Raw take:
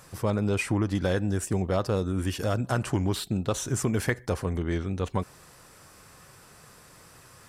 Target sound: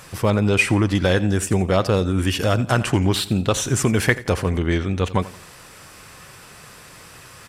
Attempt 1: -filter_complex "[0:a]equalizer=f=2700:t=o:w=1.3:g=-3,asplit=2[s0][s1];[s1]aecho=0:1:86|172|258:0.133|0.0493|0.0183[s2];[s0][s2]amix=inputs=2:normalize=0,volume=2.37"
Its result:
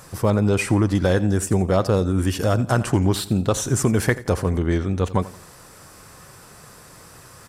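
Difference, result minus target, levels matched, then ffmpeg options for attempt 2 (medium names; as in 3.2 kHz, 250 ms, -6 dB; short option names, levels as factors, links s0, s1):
2 kHz band -5.0 dB
-filter_complex "[0:a]equalizer=f=2700:t=o:w=1.3:g=6,asplit=2[s0][s1];[s1]aecho=0:1:86|172|258:0.133|0.0493|0.0183[s2];[s0][s2]amix=inputs=2:normalize=0,volume=2.37"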